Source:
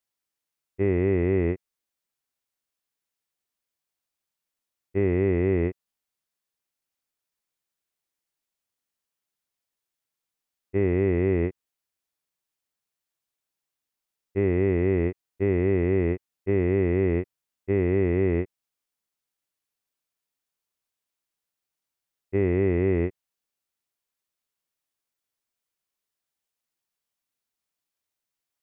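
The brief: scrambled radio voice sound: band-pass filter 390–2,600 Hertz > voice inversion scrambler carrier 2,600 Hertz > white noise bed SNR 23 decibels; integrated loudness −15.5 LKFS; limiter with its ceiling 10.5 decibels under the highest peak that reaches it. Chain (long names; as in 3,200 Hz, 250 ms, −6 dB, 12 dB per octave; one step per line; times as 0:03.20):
brickwall limiter −23.5 dBFS
band-pass filter 390–2,600 Hz
voice inversion scrambler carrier 2,600 Hz
white noise bed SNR 23 dB
level +20.5 dB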